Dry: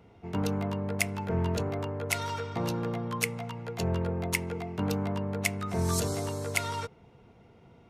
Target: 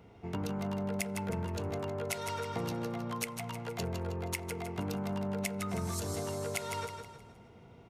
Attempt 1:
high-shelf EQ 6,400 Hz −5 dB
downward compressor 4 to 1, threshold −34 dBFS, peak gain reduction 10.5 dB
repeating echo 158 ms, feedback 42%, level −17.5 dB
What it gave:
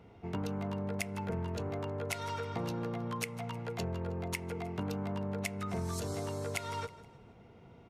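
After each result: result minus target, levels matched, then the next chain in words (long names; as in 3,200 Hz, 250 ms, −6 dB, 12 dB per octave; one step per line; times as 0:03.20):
echo-to-direct −10.5 dB; 8,000 Hz band −3.0 dB
high-shelf EQ 6,400 Hz −5 dB
downward compressor 4 to 1, threshold −34 dBFS, peak gain reduction 10.5 dB
repeating echo 158 ms, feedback 42%, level −7 dB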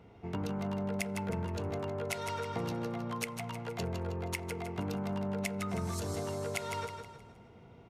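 8,000 Hz band −3.0 dB
high-shelf EQ 6,400 Hz +2 dB
downward compressor 4 to 1, threshold −34 dBFS, peak gain reduction 11.5 dB
repeating echo 158 ms, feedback 42%, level −7 dB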